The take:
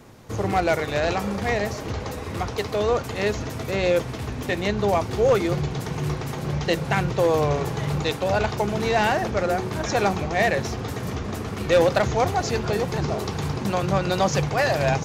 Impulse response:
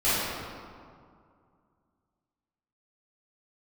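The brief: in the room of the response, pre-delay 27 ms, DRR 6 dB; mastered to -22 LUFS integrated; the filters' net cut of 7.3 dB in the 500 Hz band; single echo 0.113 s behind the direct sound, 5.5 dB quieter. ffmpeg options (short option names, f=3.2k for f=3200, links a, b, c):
-filter_complex "[0:a]equalizer=f=500:t=o:g=-9,aecho=1:1:113:0.531,asplit=2[a][b];[1:a]atrim=start_sample=2205,adelay=27[c];[b][c]afir=irnorm=-1:irlink=0,volume=-21.5dB[d];[a][d]amix=inputs=2:normalize=0,volume=3dB"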